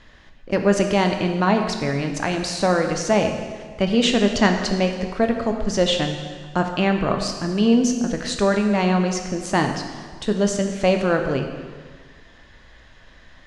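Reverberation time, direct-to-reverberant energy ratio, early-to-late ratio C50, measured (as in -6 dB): 1.6 s, 4.0 dB, 6.0 dB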